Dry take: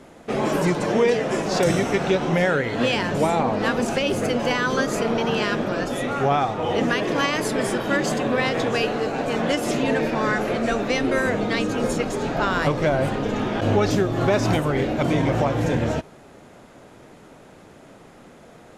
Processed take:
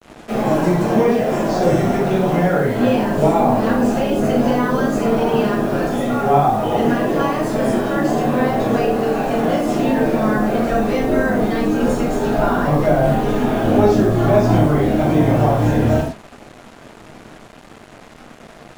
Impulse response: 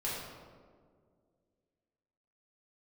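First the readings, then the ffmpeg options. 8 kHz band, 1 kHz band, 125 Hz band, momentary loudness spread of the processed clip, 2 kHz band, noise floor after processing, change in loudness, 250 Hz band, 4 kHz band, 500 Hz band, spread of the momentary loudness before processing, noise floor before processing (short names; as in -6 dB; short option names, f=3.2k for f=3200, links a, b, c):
-2.0 dB, +5.5 dB, +6.5 dB, 4 LU, -1.0 dB, -42 dBFS, +5.0 dB, +7.0 dB, -4.0 dB, +5.0 dB, 4 LU, -47 dBFS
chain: -filter_complex "[0:a]acrossover=split=330|1100[a][b][c];[c]acompressor=threshold=-37dB:ratio=6[d];[a][b][d]amix=inputs=3:normalize=0[e];[1:a]atrim=start_sample=2205,afade=t=out:st=0.26:d=0.01,atrim=end_sample=11907,asetrate=70560,aresample=44100[f];[e][f]afir=irnorm=-1:irlink=0,acrusher=bits=6:mix=0:aa=0.5,volume=5.5dB"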